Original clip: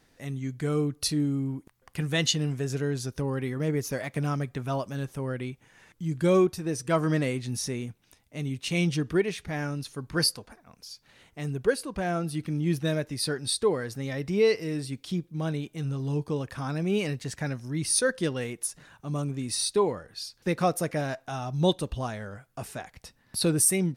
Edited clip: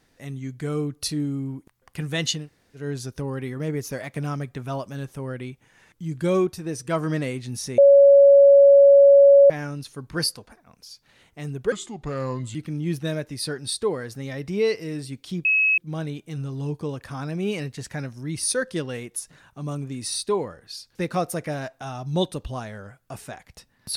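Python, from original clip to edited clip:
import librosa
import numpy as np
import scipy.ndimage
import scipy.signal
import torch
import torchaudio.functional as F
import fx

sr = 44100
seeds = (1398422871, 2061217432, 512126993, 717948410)

y = fx.edit(x, sr, fx.room_tone_fill(start_s=2.41, length_s=0.4, crossfade_s=0.16),
    fx.bleep(start_s=7.78, length_s=1.72, hz=560.0, db=-8.5),
    fx.speed_span(start_s=11.72, length_s=0.63, speed=0.76),
    fx.insert_tone(at_s=15.25, length_s=0.33, hz=2570.0, db=-16.0), tone=tone)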